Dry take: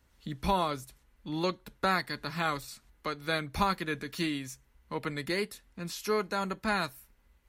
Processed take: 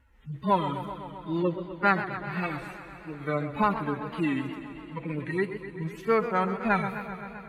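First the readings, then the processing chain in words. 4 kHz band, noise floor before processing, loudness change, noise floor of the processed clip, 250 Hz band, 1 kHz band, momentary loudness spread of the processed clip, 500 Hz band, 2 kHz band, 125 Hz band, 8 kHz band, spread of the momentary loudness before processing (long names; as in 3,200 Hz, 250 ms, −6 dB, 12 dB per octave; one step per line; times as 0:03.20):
−8.5 dB, −67 dBFS, +3.5 dB, −46 dBFS, +5.5 dB, +4.0 dB, 13 LU, +4.5 dB, +2.5 dB, +5.5 dB, below −10 dB, 12 LU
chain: harmonic-percussive split with one part muted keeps harmonic
high shelf with overshoot 3,200 Hz −10.5 dB, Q 1.5
tape wow and flutter 120 cents
on a send: delay that swaps between a low-pass and a high-pass 122 ms, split 1,000 Hz, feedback 68%, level −13.5 dB
on the sum: feedback echo with a swinging delay time 129 ms, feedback 78%, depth 113 cents, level −12.5 dB
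level +5.5 dB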